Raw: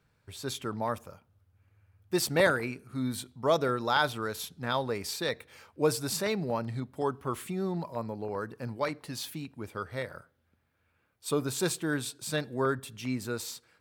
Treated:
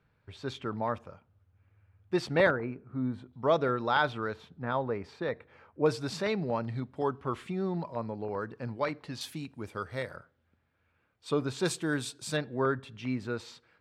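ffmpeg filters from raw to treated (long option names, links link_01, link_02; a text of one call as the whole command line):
ffmpeg -i in.wav -af "asetnsamples=nb_out_samples=441:pad=0,asendcmd='2.51 lowpass f 1200;3.33 lowpass f 3100;4.34 lowpass f 1600;5.86 lowpass f 4000;9.21 lowpass f 9300;10.16 lowpass f 4000;11.65 lowpass f 8300;12.37 lowpass f 3200',lowpass=3100" out.wav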